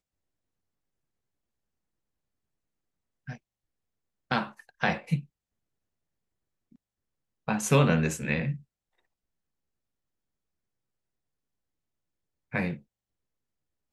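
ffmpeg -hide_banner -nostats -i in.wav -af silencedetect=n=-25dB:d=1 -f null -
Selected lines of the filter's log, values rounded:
silence_start: 0.00
silence_end: 4.31 | silence_duration: 4.31
silence_start: 5.16
silence_end: 7.48 | silence_duration: 2.32
silence_start: 8.51
silence_end: 12.55 | silence_duration: 4.03
silence_start: 12.71
silence_end: 13.93 | silence_duration: 1.22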